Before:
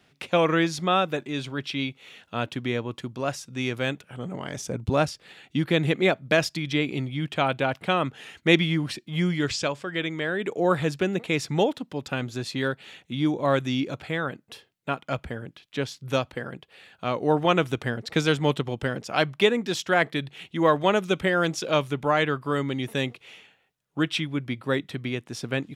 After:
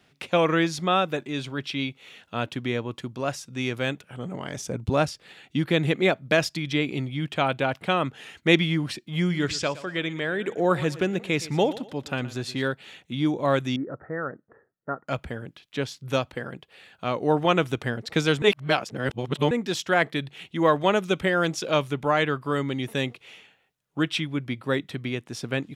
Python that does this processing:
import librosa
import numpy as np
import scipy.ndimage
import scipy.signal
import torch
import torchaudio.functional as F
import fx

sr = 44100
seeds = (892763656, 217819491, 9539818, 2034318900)

y = fx.echo_feedback(x, sr, ms=118, feedback_pct=33, wet_db=-17, at=(9.29, 12.61), fade=0.02)
y = fx.cheby_ripple(y, sr, hz=1900.0, ripple_db=6, at=(13.76, 15.08))
y = fx.edit(y, sr, fx.reverse_span(start_s=18.42, length_s=1.09), tone=tone)